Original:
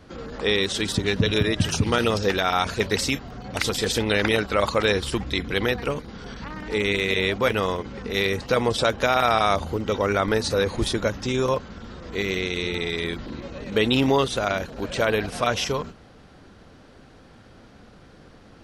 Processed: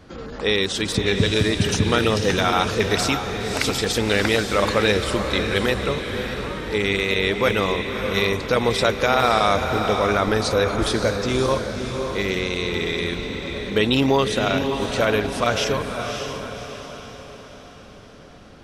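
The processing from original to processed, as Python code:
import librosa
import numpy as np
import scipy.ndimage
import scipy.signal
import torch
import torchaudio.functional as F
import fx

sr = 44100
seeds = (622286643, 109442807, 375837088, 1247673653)

y = fx.wow_flutter(x, sr, seeds[0], rate_hz=2.1, depth_cents=23.0)
y = fx.echo_diffused(y, sr, ms=571, feedback_pct=48, wet_db=-6)
y = F.gain(torch.from_numpy(y), 1.5).numpy()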